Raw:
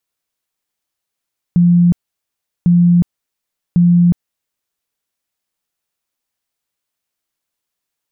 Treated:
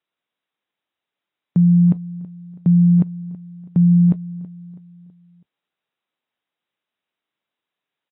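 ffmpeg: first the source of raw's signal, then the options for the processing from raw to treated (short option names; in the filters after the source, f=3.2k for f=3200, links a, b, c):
-f lavfi -i "aevalsrc='0.473*sin(2*PI*174*mod(t,1.1))*lt(mod(t,1.1),63/174)':d=3.3:s=44100"
-af "highpass=160,aecho=1:1:326|652|978|1304:0.126|0.0567|0.0255|0.0115" -ar 22050 -c:a aac -b:a 16k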